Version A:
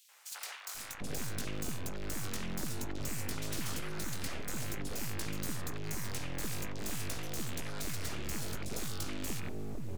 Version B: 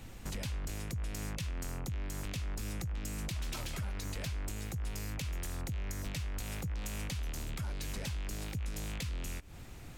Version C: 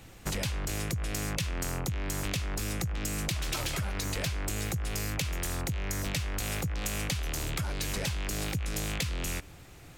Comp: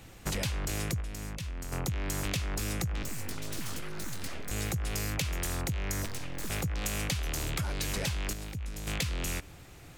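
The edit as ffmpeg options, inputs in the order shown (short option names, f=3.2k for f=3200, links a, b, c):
-filter_complex "[1:a]asplit=2[a][b];[0:a]asplit=2[c][d];[2:a]asplit=5[e][f][g][h][i];[e]atrim=end=1.012[j];[a]atrim=start=1.008:end=1.722[k];[f]atrim=start=1.718:end=3.032[l];[c]atrim=start=3.028:end=4.512[m];[g]atrim=start=4.508:end=6.062[n];[d]atrim=start=6.058:end=6.502[o];[h]atrim=start=6.498:end=8.332[p];[b]atrim=start=8.328:end=8.872[q];[i]atrim=start=8.868[r];[j][k]acrossfade=d=0.004:c1=hsin:c2=hsin[s];[s][l]acrossfade=d=0.004:c1=hsin:c2=hsin[t];[t][m]acrossfade=d=0.004:c1=hsin:c2=hsin[u];[u][n]acrossfade=d=0.004:c1=hsin:c2=hsin[v];[v][o]acrossfade=d=0.004:c1=hsin:c2=hsin[w];[w][p]acrossfade=d=0.004:c1=hsin:c2=hsin[x];[x][q]acrossfade=d=0.004:c1=hsin:c2=hsin[y];[y][r]acrossfade=d=0.004:c1=hsin:c2=hsin"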